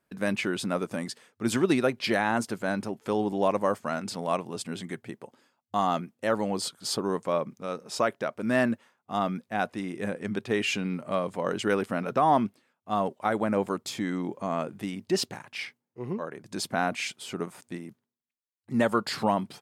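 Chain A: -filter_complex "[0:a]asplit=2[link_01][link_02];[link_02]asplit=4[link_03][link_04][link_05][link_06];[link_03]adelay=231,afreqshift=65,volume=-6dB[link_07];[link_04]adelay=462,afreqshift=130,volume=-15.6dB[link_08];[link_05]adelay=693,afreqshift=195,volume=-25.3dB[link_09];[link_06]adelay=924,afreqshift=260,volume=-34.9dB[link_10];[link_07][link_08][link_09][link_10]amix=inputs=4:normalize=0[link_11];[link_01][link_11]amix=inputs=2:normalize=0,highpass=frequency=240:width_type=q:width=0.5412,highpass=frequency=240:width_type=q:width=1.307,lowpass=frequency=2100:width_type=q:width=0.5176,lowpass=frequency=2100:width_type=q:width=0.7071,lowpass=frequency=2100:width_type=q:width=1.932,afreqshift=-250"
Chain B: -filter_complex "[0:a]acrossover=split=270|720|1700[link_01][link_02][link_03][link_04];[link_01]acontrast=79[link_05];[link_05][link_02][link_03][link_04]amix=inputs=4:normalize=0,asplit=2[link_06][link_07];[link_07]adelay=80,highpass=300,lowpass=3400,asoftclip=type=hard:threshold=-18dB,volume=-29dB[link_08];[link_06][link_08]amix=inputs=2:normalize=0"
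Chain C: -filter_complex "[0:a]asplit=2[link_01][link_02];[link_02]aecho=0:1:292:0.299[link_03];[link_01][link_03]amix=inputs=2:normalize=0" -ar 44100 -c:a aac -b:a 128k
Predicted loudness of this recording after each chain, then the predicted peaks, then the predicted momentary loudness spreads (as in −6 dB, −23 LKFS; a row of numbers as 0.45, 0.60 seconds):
−30.0, −27.0, −29.0 LKFS; −10.5, −9.5, −10.5 dBFS; 13, 11, 10 LU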